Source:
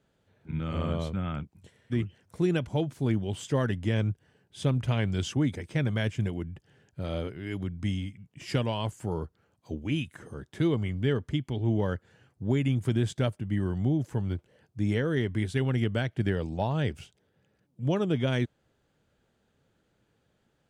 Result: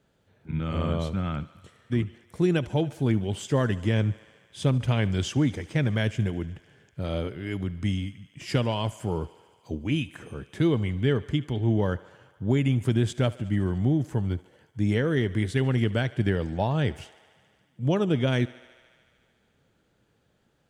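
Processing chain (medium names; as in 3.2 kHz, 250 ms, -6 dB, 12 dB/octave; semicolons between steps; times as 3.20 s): thinning echo 73 ms, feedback 81%, high-pass 320 Hz, level -20 dB; trim +3 dB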